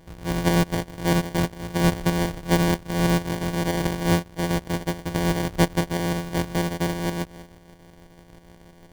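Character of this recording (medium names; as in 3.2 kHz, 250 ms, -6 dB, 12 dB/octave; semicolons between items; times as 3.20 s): a buzz of ramps at a fixed pitch in blocks of 256 samples; tremolo saw up 6.2 Hz, depth 50%; aliases and images of a low sample rate 1.3 kHz, jitter 0%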